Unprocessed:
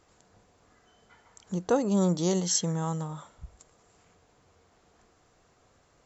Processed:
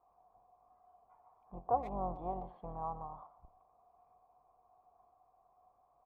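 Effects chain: octaver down 2 oct, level +3 dB; vocal tract filter a; speakerphone echo 0.12 s, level -14 dB; gain +5.5 dB

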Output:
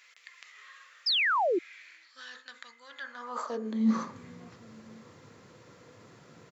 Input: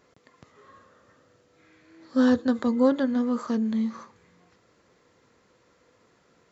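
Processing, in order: low shelf 61 Hz +7 dB; de-hum 64.2 Hz, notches 34; reverse; compressor 20:1, threshold -34 dBFS, peak gain reduction 19 dB; reverse; outdoor echo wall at 190 m, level -25 dB; high-pass sweep 2200 Hz -> 120 Hz, 2.92–4.19; painted sound fall, 1.06–1.59, 320–5400 Hz -33 dBFS; gain +7 dB

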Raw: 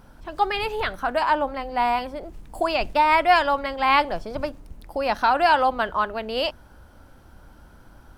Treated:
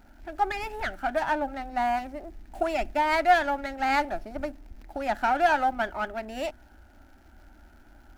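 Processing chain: crackle 410/s -50 dBFS; fixed phaser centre 720 Hz, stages 8; running maximum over 5 samples; gain -2 dB

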